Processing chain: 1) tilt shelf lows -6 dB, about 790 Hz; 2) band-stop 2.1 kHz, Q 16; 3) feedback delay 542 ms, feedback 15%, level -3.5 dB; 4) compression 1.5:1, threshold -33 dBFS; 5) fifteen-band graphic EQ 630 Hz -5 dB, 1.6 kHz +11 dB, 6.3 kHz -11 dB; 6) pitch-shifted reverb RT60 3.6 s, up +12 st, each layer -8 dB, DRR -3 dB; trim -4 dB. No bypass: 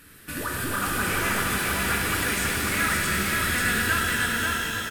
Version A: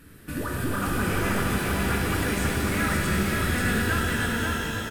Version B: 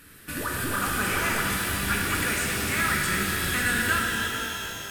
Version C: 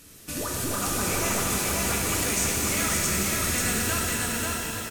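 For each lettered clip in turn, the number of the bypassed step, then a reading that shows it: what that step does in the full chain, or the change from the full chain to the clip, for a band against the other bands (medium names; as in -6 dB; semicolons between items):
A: 1, 125 Hz band +8.0 dB; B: 3, momentary loudness spread change +2 LU; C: 5, 2 kHz band -7.0 dB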